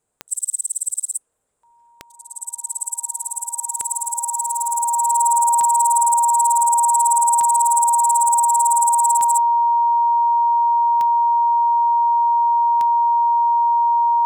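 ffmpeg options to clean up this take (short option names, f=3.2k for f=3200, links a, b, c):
-af "adeclick=t=4,bandreject=f=940:w=30"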